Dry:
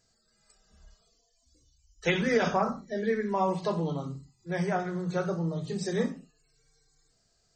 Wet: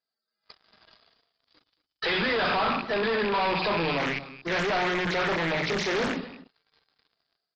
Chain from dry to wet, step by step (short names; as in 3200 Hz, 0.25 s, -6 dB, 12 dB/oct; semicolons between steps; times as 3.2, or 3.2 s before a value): rattling part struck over -42 dBFS, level -27 dBFS; HPF 330 Hz 12 dB/oct; bell 500 Hz -3.5 dB 0.69 oct; sample leveller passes 2; limiter -30 dBFS, peak gain reduction 14.5 dB; AGC gain up to 8 dB; sample leveller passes 5; rippled Chebyshev low-pass 5000 Hz, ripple 3 dB; echo 0.229 s -15.5 dB; 3.98–6.17 Doppler distortion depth 0.55 ms